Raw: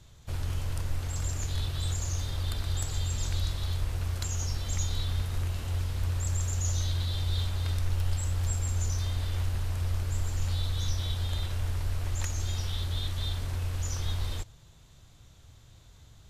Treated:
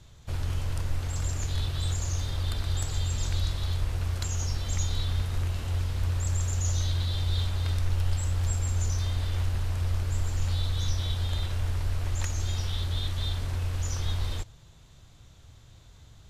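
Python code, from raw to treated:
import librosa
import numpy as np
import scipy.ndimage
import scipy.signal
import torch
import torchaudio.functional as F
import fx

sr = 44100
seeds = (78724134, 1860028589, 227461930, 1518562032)

y = fx.high_shelf(x, sr, hz=10000.0, db=-6.5)
y = y * 10.0 ** (2.0 / 20.0)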